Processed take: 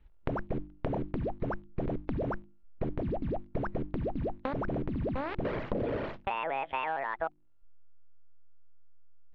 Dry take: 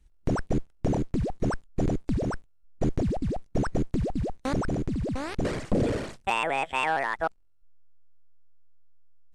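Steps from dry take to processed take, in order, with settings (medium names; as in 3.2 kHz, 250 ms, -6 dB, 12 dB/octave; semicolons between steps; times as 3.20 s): low-pass 3.3 kHz 24 dB/octave; peaking EQ 770 Hz +6.5 dB 1.6 oct; hum notches 50/100/150/200/250/300/350 Hz; compression 6:1, threshold -31 dBFS, peak gain reduction 13.5 dB; band-stop 750 Hz, Q 12; trim +1.5 dB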